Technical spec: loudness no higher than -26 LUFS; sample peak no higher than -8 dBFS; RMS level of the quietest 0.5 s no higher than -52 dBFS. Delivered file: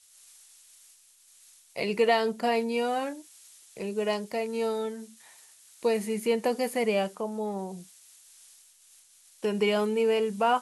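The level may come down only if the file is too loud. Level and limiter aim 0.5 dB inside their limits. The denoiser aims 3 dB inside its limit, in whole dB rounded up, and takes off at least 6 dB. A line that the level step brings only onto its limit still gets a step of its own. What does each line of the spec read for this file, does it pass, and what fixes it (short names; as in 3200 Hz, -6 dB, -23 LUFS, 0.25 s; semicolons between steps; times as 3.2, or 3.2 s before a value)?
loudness -28.5 LUFS: OK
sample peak -12.0 dBFS: OK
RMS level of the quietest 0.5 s -59 dBFS: OK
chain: none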